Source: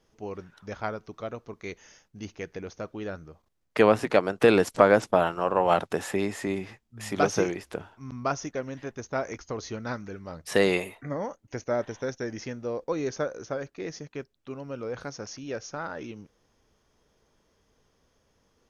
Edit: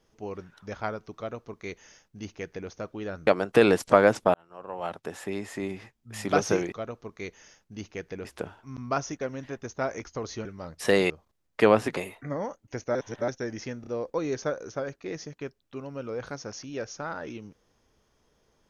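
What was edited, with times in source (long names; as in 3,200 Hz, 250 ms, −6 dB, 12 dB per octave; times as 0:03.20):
0:01.16–0:02.69: duplicate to 0:07.59
0:03.27–0:04.14: move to 0:10.77
0:05.21–0:07.07: fade in linear
0:09.79–0:10.12: remove
0:11.75–0:12.08: reverse
0:12.61: stutter 0.03 s, 3 plays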